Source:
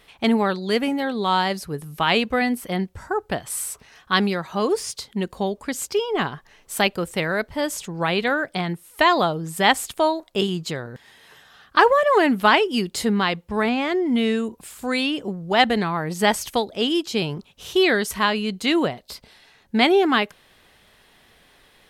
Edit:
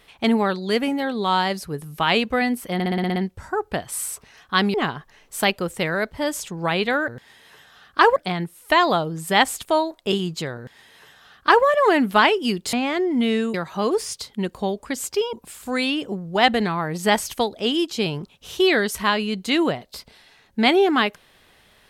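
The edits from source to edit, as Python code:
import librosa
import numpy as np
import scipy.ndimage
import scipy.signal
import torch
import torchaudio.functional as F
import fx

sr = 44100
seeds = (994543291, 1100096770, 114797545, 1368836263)

y = fx.edit(x, sr, fx.stutter(start_s=2.74, slice_s=0.06, count=8),
    fx.move(start_s=4.32, length_s=1.79, to_s=14.49),
    fx.duplicate(start_s=10.86, length_s=1.08, to_s=8.45),
    fx.cut(start_s=13.02, length_s=0.66), tone=tone)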